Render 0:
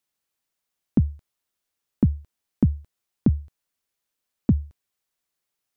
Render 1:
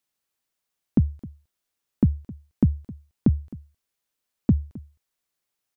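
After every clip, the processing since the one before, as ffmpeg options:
ffmpeg -i in.wav -af "aecho=1:1:263:0.1" out.wav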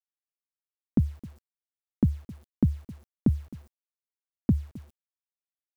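ffmpeg -i in.wav -af "acrusher=bits=8:mix=0:aa=0.000001,volume=-3.5dB" out.wav

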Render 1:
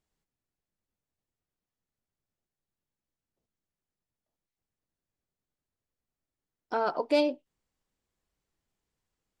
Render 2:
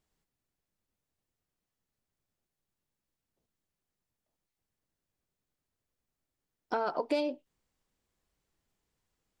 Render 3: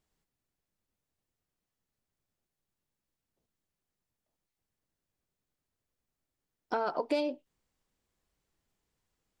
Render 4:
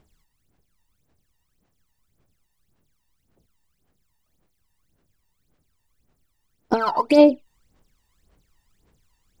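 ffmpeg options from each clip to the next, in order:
ffmpeg -i in.wav -af "acompressor=threshold=-30dB:ratio=5,volume=2.5dB" out.wav
ffmpeg -i in.wav -af anull out.wav
ffmpeg -i in.wav -af "aphaser=in_gain=1:out_gain=1:delay=1.1:decay=0.79:speed=1.8:type=sinusoidal,volume=8.5dB" out.wav

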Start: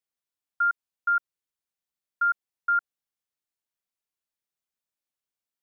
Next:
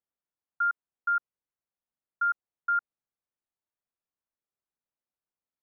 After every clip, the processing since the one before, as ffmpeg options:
ffmpeg -i in.wav -af "lowpass=1400" out.wav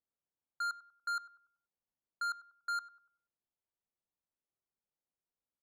ffmpeg -i in.wav -filter_complex "[0:a]asoftclip=type=tanh:threshold=-32.5dB,adynamicsmooth=sensitivity=8:basefreq=1400,asplit=2[link_01][link_02];[link_02]adelay=96,lowpass=frequency=1100:poles=1,volume=-13.5dB,asplit=2[link_03][link_04];[link_04]adelay=96,lowpass=frequency=1100:poles=1,volume=0.51,asplit=2[link_05][link_06];[link_06]adelay=96,lowpass=frequency=1100:poles=1,volume=0.51,asplit=2[link_07][link_08];[link_08]adelay=96,lowpass=frequency=1100:poles=1,volume=0.51,asplit=2[link_09][link_10];[link_10]adelay=96,lowpass=frequency=1100:poles=1,volume=0.51[link_11];[link_01][link_03][link_05][link_07][link_09][link_11]amix=inputs=6:normalize=0" out.wav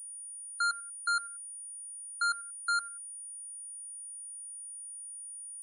ffmpeg -i in.wav -af "afftfilt=real='re*gte(hypot(re,im),0.00562)':imag='im*gte(hypot(re,im),0.00562)':win_size=1024:overlap=0.75,highpass=1300,aeval=exprs='val(0)+0.00316*sin(2*PI*9500*n/s)':channel_layout=same,volume=8.5dB" out.wav

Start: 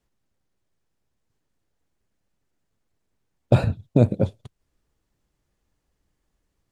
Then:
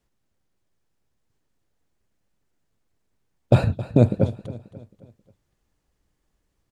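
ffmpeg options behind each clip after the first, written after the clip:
ffmpeg -i in.wav -af "aecho=1:1:268|536|804|1072:0.158|0.0697|0.0307|0.0135,volume=1dB" out.wav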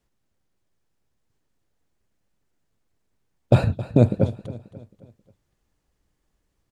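ffmpeg -i in.wav -af anull out.wav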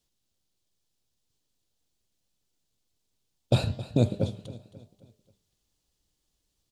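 ffmpeg -i in.wav -af "highshelf=frequency=2600:width_type=q:width=1.5:gain=10,flanger=delay=7.8:depth=8.1:regen=-88:speed=1:shape=triangular,bandreject=frequency=201.5:width_type=h:width=4,bandreject=frequency=403:width_type=h:width=4,bandreject=frequency=604.5:width_type=h:width=4,bandreject=frequency=806:width_type=h:width=4,bandreject=frequency=1007.5:width_type=h:width=4,bandreject=frequency=1209:width_type=h:width=4,bandreject=frequency=1410.5:width_type=h:width=4,bandreject=frequency=1612:width_type=h:width=4,bandreject=frequency=1813.5:width_type=h:width=4,bandreject=frequency=2015:width_type=h:width=4,bandreject=frequency=2216.5:width_type=h:width=4,bandreject=frequency=2418:width_type=h:width=4,bandreject=frequency=2619.5:width_type=h:width=4,bandreject=frequency=2821:width_type=h:width=4,bandreject=frequency=3022.5:width_type=h:width=4,bandreject=frequency=3224:width_type=h:width=4,bandreject=frequency=3425.5:width_type=h:width=4,bandreject=frequency=3627:width_type=h:width=4,bandreject=frequency=3828.5:width_type=h:width=4,bandreject=frequency=4030:width_type=h:width=4,bandreject=frequency=4231.5:width_type=h:width=4,bandreject=frequency=4433:width_type=h:width=4,bandreject=frequency=4634.5:width_type=h:width=4,bandreject=frequency=4836:width_type=h:width=4,bandreject=frequency=5037.5:width_type=h:width=4,bandreject=frequency=5239:width_type=h:width=4,bandreject=frequency=5440.5:width_type=h:width=4,bandreject=frequency=5642:width_type=h:width=4,bandreject=frequency=5843.5:width_type=h:width=4,bandreject=frequency=6045:width_type=h:width=4,bandreject=frequency=6246.5:width_type=h:width=4,bandreject=frequency=6448:width_type=h:width=4,bandreject=frequency=6649.5:width_type=h:width=4,bandreject=frequency=6851:width_type=h:width=4,bandreject=frequency=7052.5:width_type=h:width=4,bandreject=frequency=7254:width_type=h:width=4,bandreject=frequency=7455.5:width_type=h:width=4,bandreject=frequency=7657:width_type=h:width=4,bandreject=frequency=7858.5:width_type=h:width=4,bandreject=frequency=8060:width_type=h:width=4,volume=-2.5dB" out.wav

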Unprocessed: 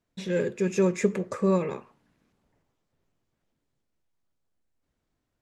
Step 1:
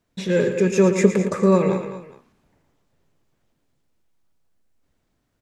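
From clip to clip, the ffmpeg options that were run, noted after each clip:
ffmpeg -i in.wav -af "aecho=1:1:114|204|225|413:0.335|0.2|0.188|0.106,volume=7dB" out.wav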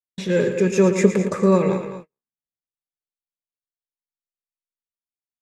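ffmpeg -i in.wav -af "agate=range=-44dB:threshold=-35dB:ratio=16:detection=peak" out.wav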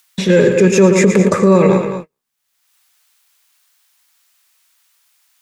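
ffmpeg -i in.wav -filter_complex "[0:a]acrossover=split=100|860[link_01][link_02][link_03];[link_03]acompressor=mode=upward:threshold=-48dB:ratio=2.5[link_04];[link_01][link_02][link_04]amix=inputs=3:normalize=0,alimiter=level_in=12dB:limit=-1dB:release=50:level=0:latency=1,volume=-1dB" out.wav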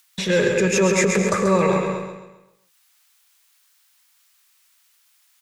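ffmpeg -i in.wav -filter_complex "[0:a]equalizer=frequency=260:width=0.65:gain=-9.5,asplit=2[link_01][link_02];[link_02]aecho=0:1:134|268|402|536|670:0.473|0.194|0.0795|0.0326|0.0134[link_03];[link_01][link_03]amix=inputs=2:normalize=0,volume=-2.5dB" out.wav

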